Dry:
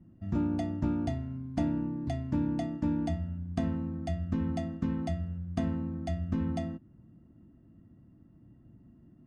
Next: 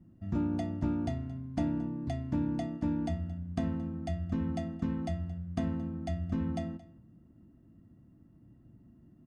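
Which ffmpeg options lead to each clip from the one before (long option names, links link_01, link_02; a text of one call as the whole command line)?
ffmpeg -i in.wav -af "aecho=1:1:223:0.106,volume=-1.5dB" out.wav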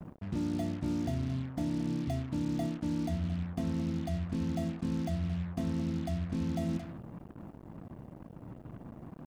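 ffmpeg -i in.wav -af "equalizer=frequency=160:width_type=o:width=0.67:gain=4,equalizer=frequency=400:width_type=o:width=0.67:gain=4,equalizer=frequency=1600:width_type=o:width=0.67:gain=-4,areverse,acompressor=threshold=-38dB:ratio=12,areverse,acrusher=bits=8:mix=0:aa=0.5,volume=8.5dB" out.wav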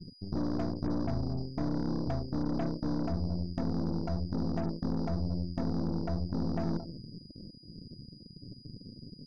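ffmpeg -i in.wav -af "aeval=exprs='val(0)+0.00224*sin(2*PI*4900*n/s)':channel_layout=same,afftfilt=real='re*gte(hypot(re,im),0.02)':imag='im*gte(hypot(re,im),0.02)':win_size=1024:overlap=0.75,aeval=exprs='0.075*(cos(1*acos(clip(val(0)/0.075,-1,1)))-cos(1*PI/2))+0.00944*(cos(4*acos(clip(val(0)/0.075,-1,1)))-cos(4*PI/2))+0.00668*(cos(8*acos(clip(val(0)/0.075,-1,1)))-cos(8*PI/2))':channel_layout=same" out.wav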